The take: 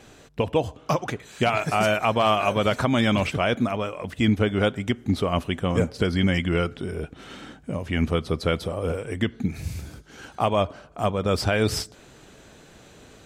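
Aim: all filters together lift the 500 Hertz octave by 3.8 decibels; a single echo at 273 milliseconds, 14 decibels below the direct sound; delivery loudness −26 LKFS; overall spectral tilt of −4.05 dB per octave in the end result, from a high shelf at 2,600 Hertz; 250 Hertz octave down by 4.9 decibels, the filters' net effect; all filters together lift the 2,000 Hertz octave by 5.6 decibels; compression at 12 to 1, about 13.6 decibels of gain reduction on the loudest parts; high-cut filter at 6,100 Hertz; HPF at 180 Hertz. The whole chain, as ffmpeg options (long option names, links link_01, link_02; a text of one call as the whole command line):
ffmpeg -i in.wav -af "highpass=180,lowpass=6100,equalizer=frequency=250:width_type=o:gain=-6,equalizer=frequency=500:width_type=o:gain=5.5,equalizer=frequency=2000:width_type=o:gain=4,highshelf=frequency=2600:gain=6.5,acompressor=threshold=-27dB:ratio=12,aecho=1:1:273:0.2,volume=6.5dB" out.wav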